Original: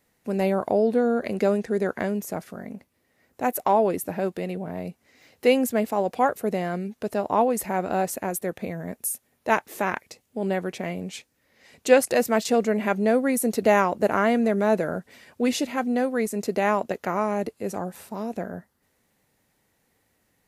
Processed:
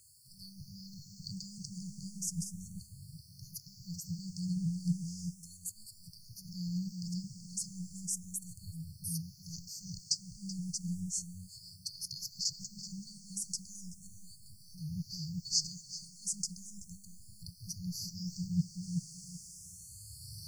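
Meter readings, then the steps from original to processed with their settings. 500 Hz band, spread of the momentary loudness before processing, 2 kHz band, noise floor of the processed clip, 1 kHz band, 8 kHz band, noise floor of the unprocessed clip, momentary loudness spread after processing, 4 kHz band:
below −40 dB, 13 LU, below −40 dB, −57 dBFS, below −40 dB, −2.0 dB, −70 dBFS, 16 LU, −1.5 dB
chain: camcorder AGC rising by 5.1 dB per second
high-pass filter 120 Hz
high-shelf EQ 3,800 Hz +12 dB
reversed playback
downward compressor 5 to 1, threshold −33 dBFS, peak gain reduction 23.5 dB
reversed playback
soft clipping −21 dBFS, distortion −25 dB
background noise violet −52 dBFS
linear-phase brick-wall band-stop 170–4,300 Hz
high-frequency loss of the air 120 metres
on a send: feedback echo with a low-pass in the loop 380 ms, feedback 26%, low-pass 2,000 Hz, level −4 dB
on the sum: frequency shifter mixed with the dry sound +0.35 Hz
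level +15.5 dB

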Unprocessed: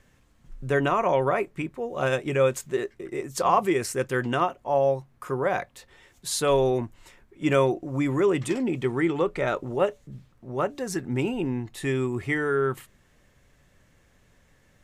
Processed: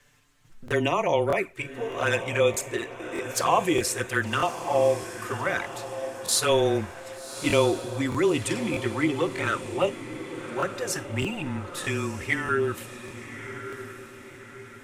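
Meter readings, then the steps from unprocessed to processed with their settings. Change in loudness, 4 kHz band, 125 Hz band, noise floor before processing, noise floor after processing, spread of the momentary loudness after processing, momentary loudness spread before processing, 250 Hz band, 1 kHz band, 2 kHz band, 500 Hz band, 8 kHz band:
−0.5 dB, +6.0 dB, −1.5 dB, −62 dBFS, −46 dBFS, 15 LU, 10 LU, −1.5 dB, −1.0 dB, +3.0 dB, −1.0 dB, +5.5 dB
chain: four-comb reverb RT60 0.3 s, combs from 32 ms, DRR 17 dB
flanger swept by the level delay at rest 6.9 ms, full sweep at −18.5 dBFS
tilt shelving filter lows −5 dB
frequency shifter −19 Hz
on a send: feedback delay with all-pass diffusion 1,163 ms, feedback 47%, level −11 dB
on the sum: regular buffer underruns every 0.62 s, samples 1,024, repeat, from 0:00.66
level +3.5 dB

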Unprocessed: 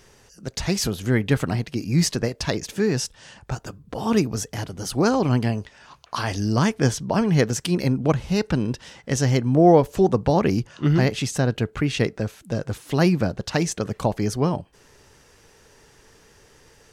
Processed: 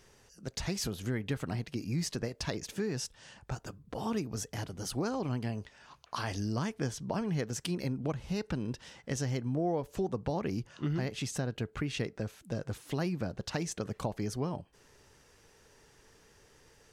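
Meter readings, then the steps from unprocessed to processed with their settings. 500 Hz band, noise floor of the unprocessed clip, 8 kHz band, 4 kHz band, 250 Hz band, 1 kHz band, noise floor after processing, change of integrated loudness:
−14.0 dB, −55 dBFS, −10.5 dB, −11.0 dB, −13.0 dB, −14.0 dB, −63 dBFS, −13.5 dB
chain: downward compressor 3 to 1, threshold −23 dBFS, peak gain reduction 10.5 dB
level −8 dB

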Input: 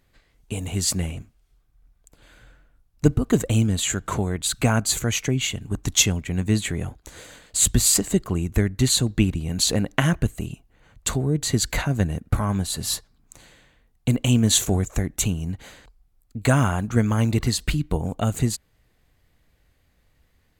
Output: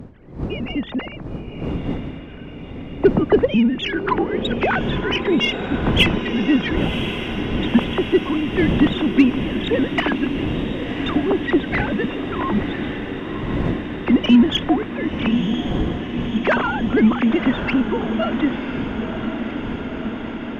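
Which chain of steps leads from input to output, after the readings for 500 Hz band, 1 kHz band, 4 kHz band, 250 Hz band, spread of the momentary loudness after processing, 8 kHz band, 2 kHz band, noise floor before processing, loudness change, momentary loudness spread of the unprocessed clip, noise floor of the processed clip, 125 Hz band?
+8.0 dB, +7.0 dB, +1.5 dB, +7.5 dB, 11 LU, below −25 dB, +7.5 dB, −65 dBFS, +2.5 dB, 10 LU, −34 dBFS, −4.0 dB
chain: three sine waves on the formant tracks
wind on the microphone 250 Hz −31 dBFS
tape wow and flutter 26 cents
harmonic generator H 8 −30 dB, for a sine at −4 dBFS
on a send: feedback delay with all-pass diffusion 1,041 ms, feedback 75%, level −8.5 dB
on the sum: level +2 dB

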